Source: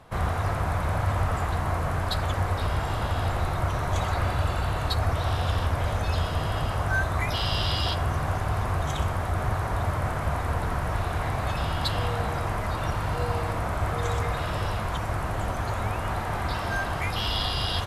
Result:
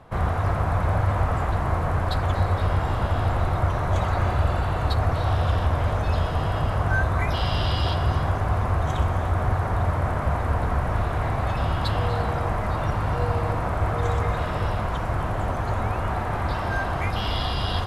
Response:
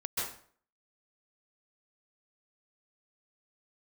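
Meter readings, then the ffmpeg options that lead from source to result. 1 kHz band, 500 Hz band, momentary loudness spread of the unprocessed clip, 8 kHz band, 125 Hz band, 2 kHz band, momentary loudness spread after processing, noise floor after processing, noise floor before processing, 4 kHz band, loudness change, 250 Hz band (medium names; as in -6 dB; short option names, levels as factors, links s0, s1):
+2.5 dB, +3.5 dB, 3 LU, -5.5 dB, +4.0 dB, +0.5 dB, 3 LU, -27 dBFS, -30 dBFS, -2.5 dB, +3.0 dB, +3.5 dB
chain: -filter_complex "[0:a]highshelf=f=2700:g=-10,asplit=2[s0][s1];[1:a]atrim=start_sample=2205,asetrate=23814,aresample=44100[s2];[s1][s2]afir=irnorm=-1:irlink=0,volume=0.141[s3];[s0][s3]amix=inputs=2:normalize=0,volume=1.26"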